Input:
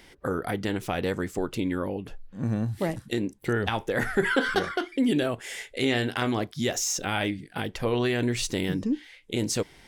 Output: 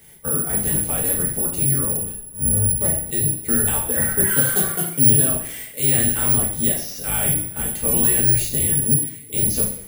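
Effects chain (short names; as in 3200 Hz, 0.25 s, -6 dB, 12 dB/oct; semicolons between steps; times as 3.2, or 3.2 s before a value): octaver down 1 oct, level +4 dB; careless resampling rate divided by 4×, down filtered, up zero stuff; two-slope reverb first 0.54 s, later 1.9 s, from -21 dB, DRR -4.5 dB; gain -7 dB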